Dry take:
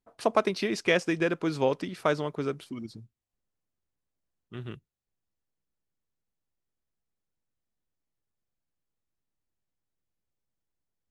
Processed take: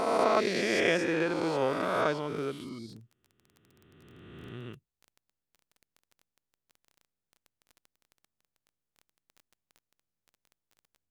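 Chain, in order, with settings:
peak hold with a rise ahead of every peak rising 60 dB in 2.23 s
surface crackle 16 per second −36 dBFS
level −6 dB

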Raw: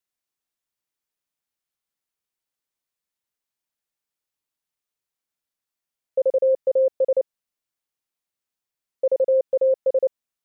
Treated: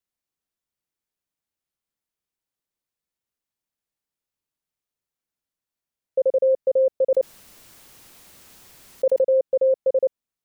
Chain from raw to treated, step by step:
low-shelf EQ 480 Hz +7 dB
0:07.10–0:09.24: envelope flattener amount 100%
level −3 dB

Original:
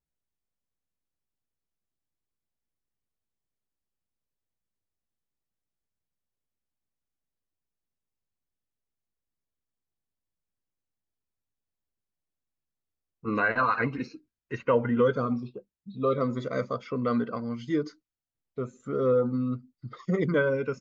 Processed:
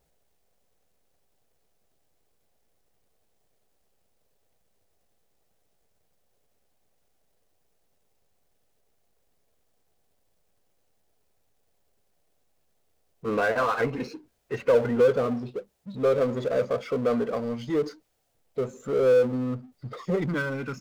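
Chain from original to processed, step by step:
flat-topped bell 570 Hz +9 dB 1.2 octaves, from 0:20.18 −9 dB
power curve on the samples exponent 0.7
level −6.5 dB

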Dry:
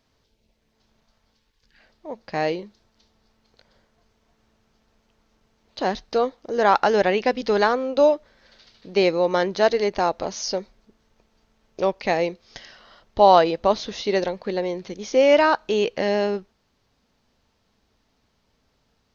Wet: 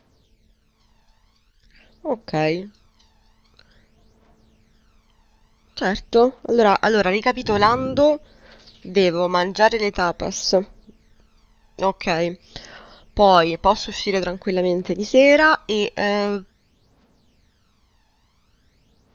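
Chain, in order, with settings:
0:07.44–0:07.99: noise in a band 74–380 Hz −35 dBFS
phase shifter 0.47 Hz, delay 1.2 ms, feedback 60%
level +3 dB

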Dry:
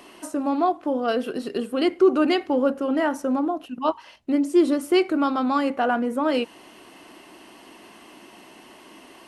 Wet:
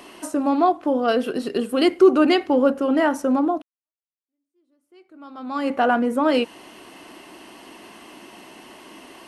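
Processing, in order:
0:01.69–0:02.11: high-shelf EQ 5,800 Hz +7.5 dB
0:03.62–0:05.73: fade in exponential
level +3.5 dB

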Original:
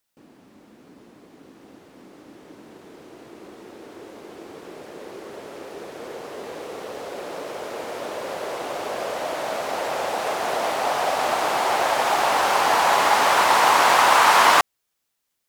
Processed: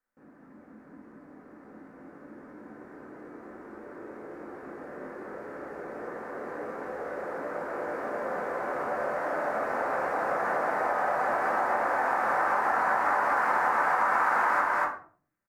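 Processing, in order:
single-tap delay 236 ms −4 dB
rectangular room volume 320 cubic metres, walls furnished, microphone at 2 metres
downward compressor 4 to 1, threshold −17 dBFS, peak gain reduction 9.5 dB
high shelf with overshoot 2,300 Hz −12 dB, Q 3
level −9 dB

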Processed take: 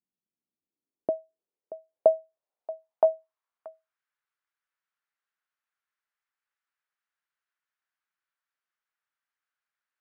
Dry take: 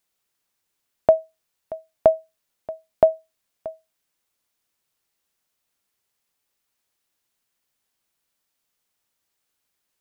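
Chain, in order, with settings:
0:03.04–0:03.68: dynamic equaliser 560 Hz, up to +4 dB, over −31 dBFS, Q 1.7
band-pass filter sweep 210 Hz → 1,500 Hz, 0:00.27–0:04.08
level −1.5 dB

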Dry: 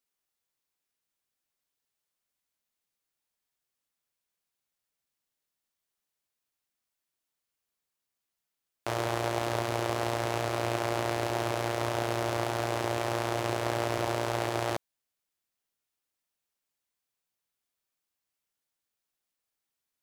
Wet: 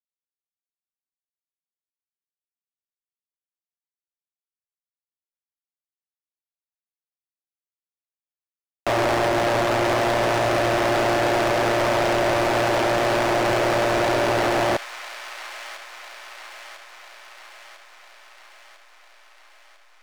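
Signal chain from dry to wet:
slack as between gear wheels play −42 dBFS
mid-hump overdrive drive 35 dB, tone 4,800 Hz, clips at −12.5 dBFS
delay with a high-pass on its return 999 ms, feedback 61%, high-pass 1,500 Hz, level −9 dB

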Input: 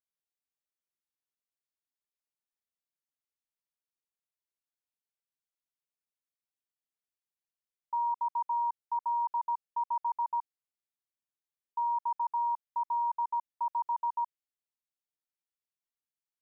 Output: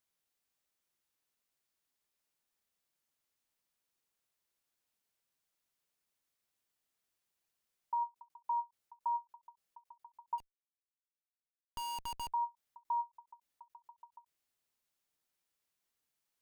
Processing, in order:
in parallel at +2 dB: compressor whose output falls as the input rises −37 dBFS, ratio −0.5
0:10.38–0:12.33: on the sum: comparator with hysteresis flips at −37 dBFS
every ending faded ahead of time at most 420 dB per second
level −5.5 dB

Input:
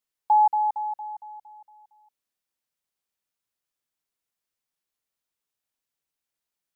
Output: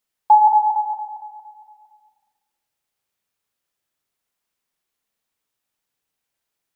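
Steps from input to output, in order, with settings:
dynamic equaliser 910 Hz, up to +3 dB, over −30 dBFS, Q 1.8
spring reverb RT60 1.2 s, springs 37/46 ms, chirp 40 ms, DRR 2 dB
level +5.5 dB

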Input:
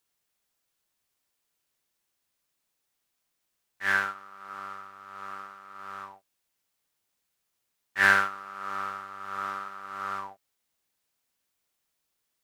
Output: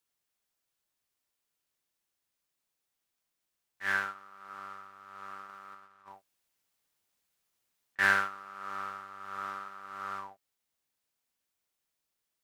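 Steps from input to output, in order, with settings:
0:05.49–0:07.99: compressor whose output falls as the input rises −47 dBFS, ratio −0.5
level −5 dB

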